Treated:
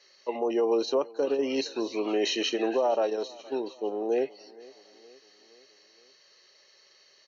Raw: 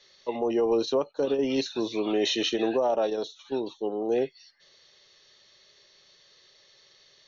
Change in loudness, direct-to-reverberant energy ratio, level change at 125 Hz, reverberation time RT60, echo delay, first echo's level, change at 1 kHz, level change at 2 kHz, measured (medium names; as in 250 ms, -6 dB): -1.0 dB, no reverb, no reading, no reverb, 468 ms, -22.5 dB, 0.0 dB, 0.0 dB